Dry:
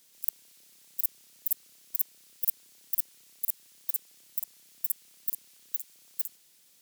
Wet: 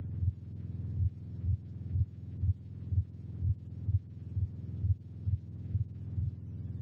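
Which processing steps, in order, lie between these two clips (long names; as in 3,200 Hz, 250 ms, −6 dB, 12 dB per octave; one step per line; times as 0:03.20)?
frequency axis turned over on the octave scale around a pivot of 940 Hz
multiband upward and downward compressor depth 70%
level +3.5 dB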